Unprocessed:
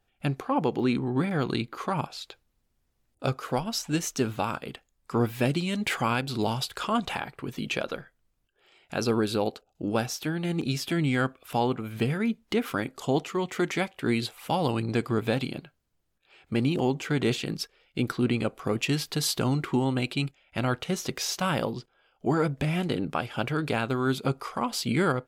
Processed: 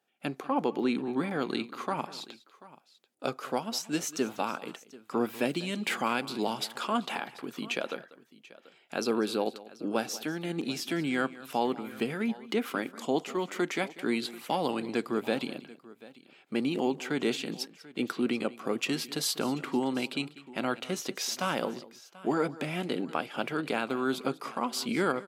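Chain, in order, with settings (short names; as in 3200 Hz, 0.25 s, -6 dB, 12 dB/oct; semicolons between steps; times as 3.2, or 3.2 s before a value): HPF 200 Hz 24 dB/oct; tapped delay 0.193/0.737 s -18.5/-20 dB; gain -2.5 dB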